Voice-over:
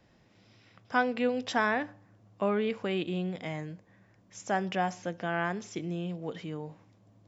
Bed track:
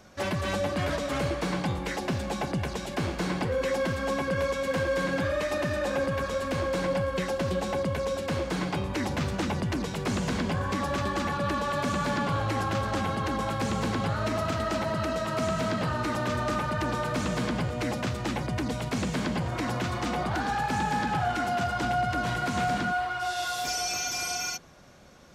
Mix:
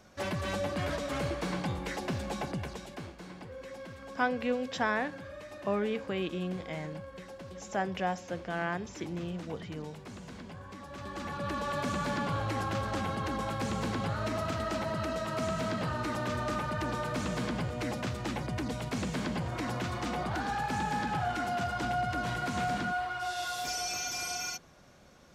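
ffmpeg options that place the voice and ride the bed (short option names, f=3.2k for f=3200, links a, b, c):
-filter_complex "[0:a]adelay=3250,volume=-2.5dB[a];[1:a]volume=8dB,afade=t=out:st=2.38:d=0.77:silence=0.237137,afade=t=in:st=10.89:d=0.81:silence=0.237137[b];[a][b]amix=inputs=2:normalize=0"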